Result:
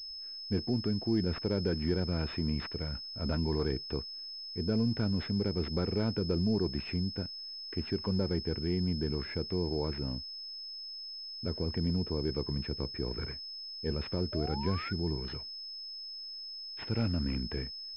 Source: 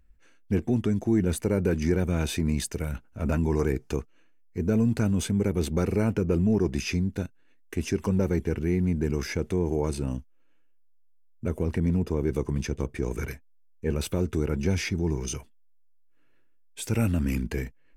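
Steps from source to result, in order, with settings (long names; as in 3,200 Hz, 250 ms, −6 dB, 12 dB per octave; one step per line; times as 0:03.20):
sound drawn into the spectrogram rise, 0:14.32–0:14.93, 580–1,500 Hz −36 dBFS
switching amplifier with a slow clock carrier 5,200 Hz
level −6.5 dB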